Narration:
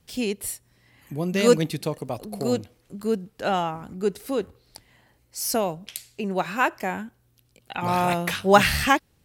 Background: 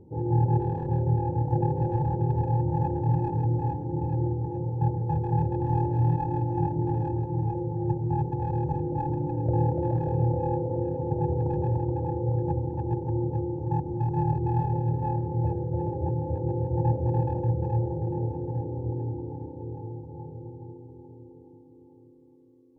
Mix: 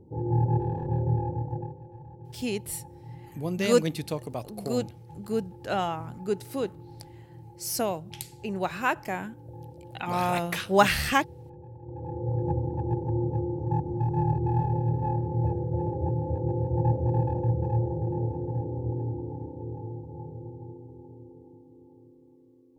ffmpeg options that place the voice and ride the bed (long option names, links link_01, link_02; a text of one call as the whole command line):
ffmpeg -i stem1.wav -i stem2.wav -filter_complex "[0:a]adelay=2250,volume=-4dB[link_01];[1:a]volume=18dB,afade=type=out:start_time=1.17:duration=0.62:silence=0.125893,afade=type=in:start_time=11.8:duration=0.71:silence=0.105925[link_02];[link_01][link_02]amix=inputs=2:normalize=0" out.wav